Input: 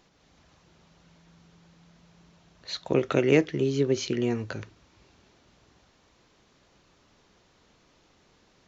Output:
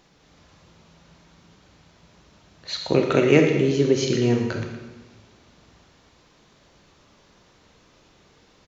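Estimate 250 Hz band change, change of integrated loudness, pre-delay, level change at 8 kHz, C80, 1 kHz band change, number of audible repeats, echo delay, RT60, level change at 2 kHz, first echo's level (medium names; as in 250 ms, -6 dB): +6.0 dB, +5.5 dB, 25 ms, no reading, 6.5 dB, +6.0 dB, 1, 116 ms, 1.2 s, +6.0 dB, -12.5 dB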